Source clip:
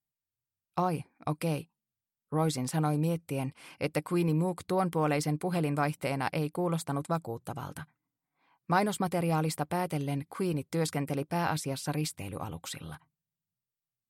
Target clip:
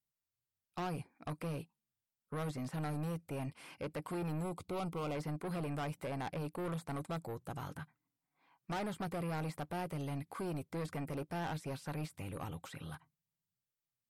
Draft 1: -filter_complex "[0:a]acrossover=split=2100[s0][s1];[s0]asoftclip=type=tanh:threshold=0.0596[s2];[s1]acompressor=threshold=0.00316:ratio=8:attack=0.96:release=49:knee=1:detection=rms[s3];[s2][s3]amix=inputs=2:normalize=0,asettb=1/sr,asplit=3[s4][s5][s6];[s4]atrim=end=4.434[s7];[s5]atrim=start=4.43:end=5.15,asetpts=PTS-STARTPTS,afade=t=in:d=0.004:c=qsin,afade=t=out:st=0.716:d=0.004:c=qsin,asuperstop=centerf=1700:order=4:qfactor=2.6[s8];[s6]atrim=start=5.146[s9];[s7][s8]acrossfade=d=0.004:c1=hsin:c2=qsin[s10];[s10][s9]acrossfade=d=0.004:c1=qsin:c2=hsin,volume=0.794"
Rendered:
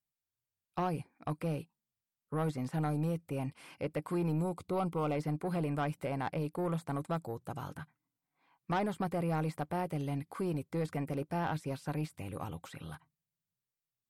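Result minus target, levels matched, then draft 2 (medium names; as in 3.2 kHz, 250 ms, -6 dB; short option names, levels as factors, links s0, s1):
saturation: distortion -8 dB
-filter_complex "[0:a]acrossover=split=2100[s0][s1];[s0]asoftclip=type=tanh:threshold=0.02[s2];[s1]acompressor=threshold=0.00316:ratio=8:attack=0.96:release=49:knee=1:detection=rms[s3];[s2][s3]amix=inputs=2:normalize=0,asettb=1/sr,asplit=3[s4][s5][s6];[s4]atrim=end=4.434[s7];[s5]atrim=start=4.43:end=5.15,asetpts=PTS-STARTPTS,afade=t=in:d=0.004:c=qsin,afade=t=out:st=0.716:d=0.004:c=qsin,asuperstop=centerf=1700:order=4:qfactor=2.6[s8];[s6]atrim=start=5.146[s9];[s7][s8]acrossfade=d=0.004:c1=hsin:c2=qsin[s10];[s10][s9]acrossfade=d=0.004:c1=qsin:c2=hsin,volume=0.794"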